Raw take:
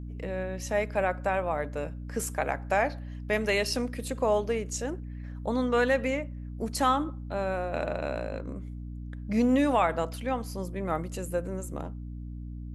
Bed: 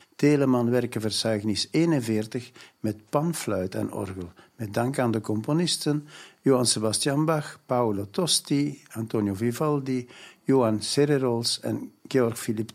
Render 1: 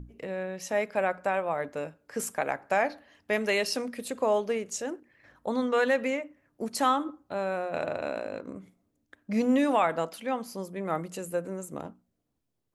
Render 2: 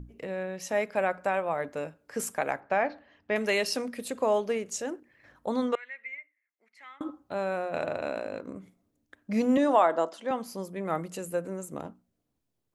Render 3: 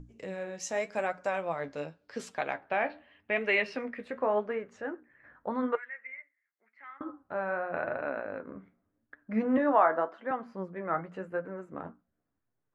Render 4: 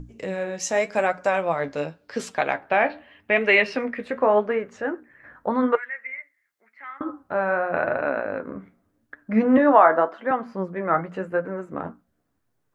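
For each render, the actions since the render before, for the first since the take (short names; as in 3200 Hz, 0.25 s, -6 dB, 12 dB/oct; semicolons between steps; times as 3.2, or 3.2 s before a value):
notches 60/120/180/240/300 Hz
2.6–3.36 air absorption 190 m; 5.75–7.01 band-pass 2100 Hz, Q 14; 9.57–10.31 speaker cabinet 280–8100 Hz, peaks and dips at 340 Hz +6 dB, 630 Hz +5 dB, 1000 Hz +4 dB, 2400 Hz -10 dB, 4600 Hz -4 dB
flange 0.87 Hz, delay 6.3 ms, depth 8.6 ms, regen +48%; low-pass sweep 7000 Hz -> 1600 Hz, 0.94–4.41
gain +9.5 dB; limiter -3 dBFS, peak gain reduction 2 dB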